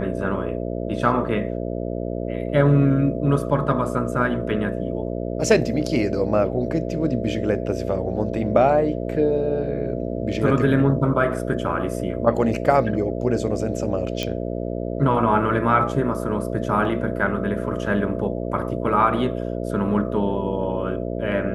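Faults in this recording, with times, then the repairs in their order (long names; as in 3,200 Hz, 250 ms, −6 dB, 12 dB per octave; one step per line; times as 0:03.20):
mains buzz 60 Hz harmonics 11 −27 dBFS
0:14.23: click −10 dBFS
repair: click removal
hum removal 60 Hz, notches 11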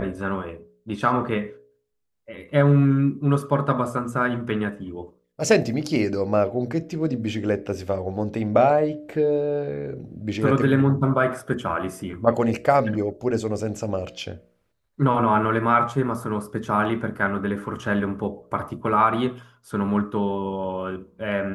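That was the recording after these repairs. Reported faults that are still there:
none of them is left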